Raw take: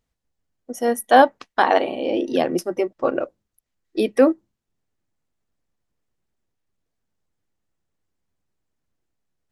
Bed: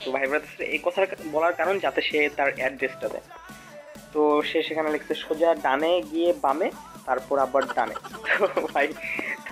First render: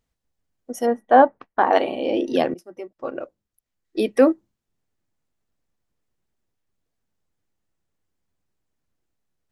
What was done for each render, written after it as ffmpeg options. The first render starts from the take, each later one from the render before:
ffmpeg -i in.wav -filter_complex "[0:a]asplit=3[link_01][link_02][link_03];[link_01]afade=type=out:start_time=0.85:duration=0.02[link_04];[link_02]lowpass=1400,afade=type=in:start_time=0.85:duration=0.02,afade=type=out:start_time=1.72:duration=0.02[link_05];[link_03]afade=type=in:start_time=1.72:duration=0.02[link_06];[link_04][link_05][link_06]amix=inputs=3:normalize=0,asplit=2[link_07][link_08];[link_07]atrim=end=2.54,asetpts=PTS-STARTPTS,afade=type=out:start_time=2.536:duration=0.004:curve=hsin:silence=0.0794328[link_09];[link_08]atrim=start=2.54,asetpts=PTS-STARTPTS,afade=type=in:duration=1.72:silence=0.0794328[link_10];[link_09][link_10]concat=n=2:v=0:a=1" out.wav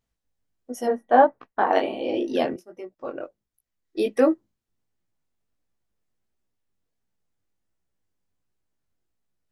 ffmpeg -i in.wav -af "flanger=delay=16:depth=5.8:speed=1.4" out.wav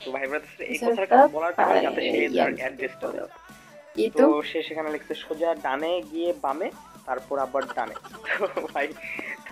ffmpeg -i in.wav -i bed.wav -filter_complex "[1:a]volume=-4dB[link_01];[0:a][link_01]amix=inputs=2:normalize=0" out.wav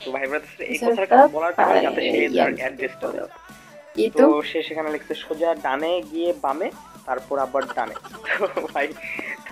ffmpeg -i in.wav -af "volume=3.5dB,alimiter=limit=-2dB:level=0:latency=1" out.wav

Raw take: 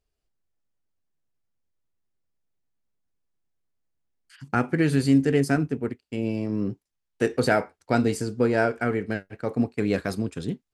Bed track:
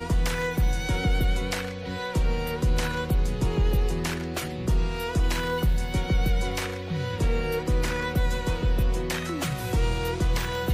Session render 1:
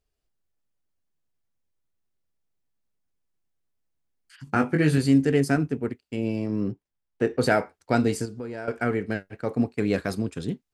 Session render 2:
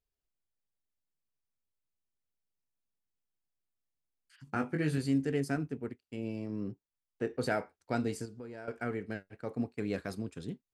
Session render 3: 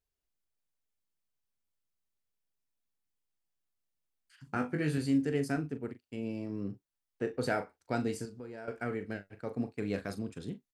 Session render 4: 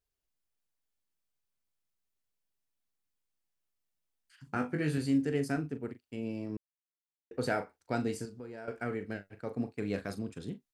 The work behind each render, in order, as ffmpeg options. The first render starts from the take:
ffmpeg -i in.wav -filter_complex "[0:a]asettb=1/sr,asplit=3[link_01][link_02][link_03];[link_01]atrim=end=4.454[link_04];[link_02]atrim=start=4.45:end=4.98,asetpts=PTS-STARTPTS,afade=type=in:duration=0.004:curve=qsin,afade=type=out:start_time=0.526:duration=0.004:curve=qsin,asplit=2[link_05][link_06];[link_06]adelay=20,volume=-5dB[link_07];[link_05][link_07]amix=inputs=2:normalize=0,atrim=end_sample=23373[link_08];[link_03]atrim=start=4.976[link_09];[link_04][link_08]acrossfade=duration=0.004:curve1=hsin:curve2=qsin[link_10];[link_10][link_09]acrossfade=duration=0.004:curve1=qsin:curve2=hsin,asplit=3[link_11][link_12][link_13];[link_11]afade=type=out:start_time=6.71:duration=0.02[link_14];[link_12]lowpass=frequency=1600:poles=1,afade=type=in:start_time=6.71:duration=0.02,afade=type=out:start_time=7.39:duration=0.02[link_15];[link_13]afade=type=in:start_time=7.39:duration=0.02[link_16];[link_14][link_15][link_16]amix=inputs=3:normalize=0,asettb=1/sr,asplit=3[link_17][link_18][link_19];[link_17]atrim=end=8.254[link_20];[link_18]atrim=start=8.25:end=8.68,asetpts=PTS-STARTPTS,afade=type=in:duration=0.004:curve=qsin,afade=type=out:start_time=0.426:duration=0.004:curve=qsin,acompressor=threshold=-35dB:ratio=3:attack=3.2:release=140:knee=1:detection=peak[link_21];[link_19]atrim=start=8.676[link_22];[link_20][link_21]acrossfade=duration=0.004:curve1=hsin:curve2=qsin[link_23];[link_23][link_22]acrossfade=duration=0.004:curve1=qsin:curve2=hsin" out.wav
ffmpeg -i in.wav -af "volume=-10.5dB" out.wav
ffmpeg -i in.wav -filter_complex "[0:a]asplit=2[link_01][link_02];[link_02]adelay=40,volume=-11dB[link_03];[link_01][link_03]amix=inputs=2:normalize=0" out.wav
ffmpeg -i in.wav -filter_complex "[0:a]asplit=3[link_01][link_02][link_03];[link_01]atrim=end=6.57,asetpts=PTS-STARTPTS,afade=type=out:start_time=6.566:duration=0.004:curve=hsin[link_04];[link_02]atrim=start=6.57:end=7.31,asetpts=PTS-STARTPTS,volume=0[link_05];[link_03]atrim=start=7.31,asetpts=PTS-STARTPTS,afade=type=in:duration=0.004:curve=hsin[link_06];[link_04][link_05][link_06]concat=n=3:v=0:a=1" out.wav

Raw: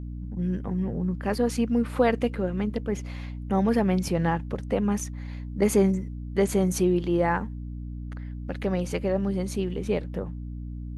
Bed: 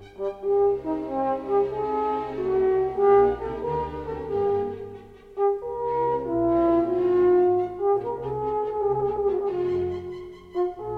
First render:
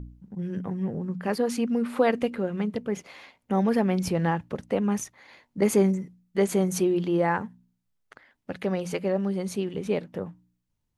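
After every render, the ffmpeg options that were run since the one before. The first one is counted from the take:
ffmpeg -i in.wav -af "bandreject=frequency=60:width_type=h:width=4,bandreject=frequency=120:width_type=h:width=4,bandreject=frequency=180:width_type=h:width=4,bandreject=frequency=240:width_type=h:width=4,bandreject=frequency=300:width_type=h:width=4" out.wav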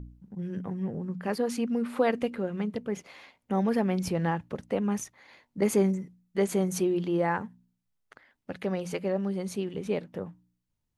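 ffmpeg -i in.wav -af "volume=-3dB" out.wav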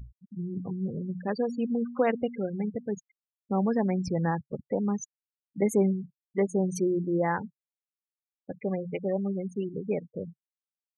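ffmpeg -i in.wav -af "afftfilt=real='re*gte(hypot(re,im),0.0316)':imag='im*gte(hypot(re,im),0.0316)':win_size=1024:overlap=0.75,adynamicequalizer=threshold=0.00316:dfrequency=140:dqfactor=3.8:tfrequency=140:tqfactor=3.8:attack=5:release=100:ratio=0.375:range=1.5:mode=boostabove:tftype=bell" out.wav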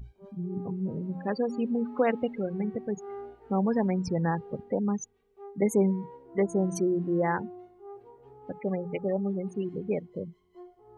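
ffmpeg -i in.wav -i bed.wav -filter_complex "[1:a]volume=-23dB[link_01];[0:a][link_01]amix=inputs=2:normalize=0" out.wav

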